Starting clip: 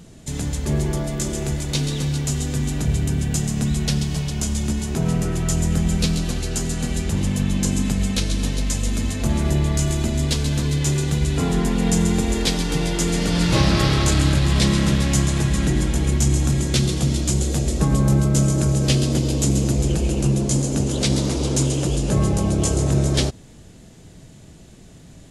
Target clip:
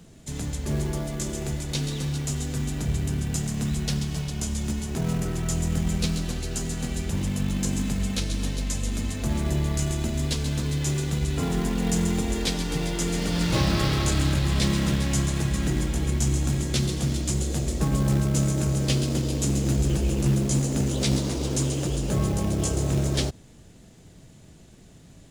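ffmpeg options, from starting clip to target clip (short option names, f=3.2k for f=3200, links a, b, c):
-filter_complex "[0:a]asettb=1/sr,asplit=3[a][b][c];[a]atrim=end=19.644[d];[b]atrim=start=19.64:end=21.17,asetpts=PTS-STARTPTS,afade=t=in:d=0.004:c=qsin,afade=t=out:st=1.526:d=0.004:c=qsin,asplit=2[e][f];[f]adelay=15,volume=-8dB[g];[e][g]amix=inputs=2:normalize=0,atrim=end_sample=67473[h];[c]atrim=start=21.166[i];[d][h]acrossfade=d=0.004:c1=hsin:c2=qsin[j];[j][i]acrossfade=d=0.004:c1=qsin:c2=hsin,acrossover=split=110|1600[k][l][m];[l]acrusher=bits=4:mode=log:mix=0:aa=0.000001[n];[k][n][m]amix=inputs=3:normalize=0,volume=-5.5dB"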